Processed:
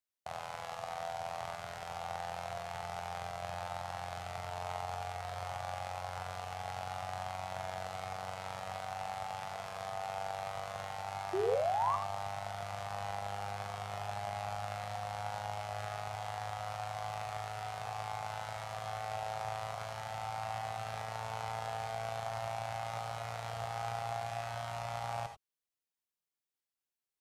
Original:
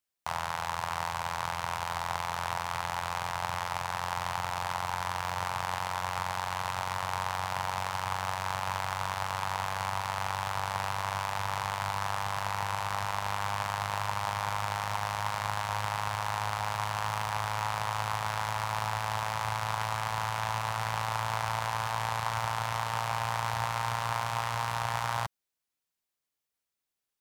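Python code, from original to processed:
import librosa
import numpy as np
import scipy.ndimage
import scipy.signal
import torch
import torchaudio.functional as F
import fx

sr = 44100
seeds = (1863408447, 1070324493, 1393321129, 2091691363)

y = fx.formant_shift(x, sr, semitones=-5)
y = fx.spec_paint(y, sr, seeds[0], shape='rise', start_s=11.33, length_s=0.63, low_hz=360.0, high_hz=1200.0, level_db=-24.0)
y = fx.rev_gated(y, sr, seeds[1], gate_ms=110, shape='rising', drr_db=6.0)
y = F.gain(torch.from_numpy(y), -8.5).numpy()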